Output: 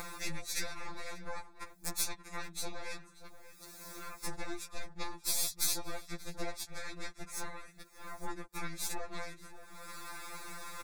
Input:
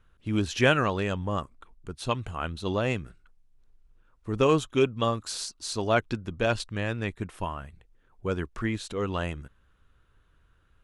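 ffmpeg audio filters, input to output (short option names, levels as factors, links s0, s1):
-filter_complex "[0:a]highpass=270,acompressor=mode=upward:threshold=0.0251:ratio=2.5,alimiter=limit=0.158:level=0:latency=1:release=223,acompressor=threshold=0.00708:ratio=8,aeval=exprs='0.0668*(cos(1*acos(clip(val(0)/0.0668,-1,1)))-cos(1*PI/2))+0.00133*(cos(2*acos(clip(val(0)/0.0668,-1,1)))-cos(2*PI/2))+0.00299*(cos(3*acos(clip(val(0)/0.0668,-1,1)))-cos(3*PI/2))+0.015*(cos(4*acos(clip(val(0)/0.0668,-1,1)))-cos(4*PI/2))+0.0119*(cos(8*acos(clip(val(0)/0.0668,-1,1)))-cos(8*PI/2))':c=same,crystalizer=i=3:c=0,asplit=2[s0][s1];[s1]asetrate=33038,aresample=44100,atempo=1.33484,volume=0.891[s2];[s0][s2]amix=inputs=2:normalize=0,asuperstop=centerf=3000:order=4:qfactor=3.5,asplit=2[s3][s4];[s4]adelay=583.1,volume=0.224,highshelf=f=4000:g=-13.1[s5];[s3][s5]amix=inputs=2:normalize=0,afftfilt=real='re*2.83*eq(mod(b,8),0)':imag='im*2.83*eq(mod(b,8),0)':win_size=2048:overlap=0.75,volume=1.19"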